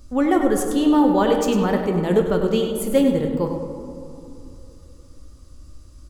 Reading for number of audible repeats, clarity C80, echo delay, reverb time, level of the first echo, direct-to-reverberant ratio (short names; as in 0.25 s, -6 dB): 1, 5.0 dB, 0.1 s, 2.8 s, -8.5 dB, 2.5 dB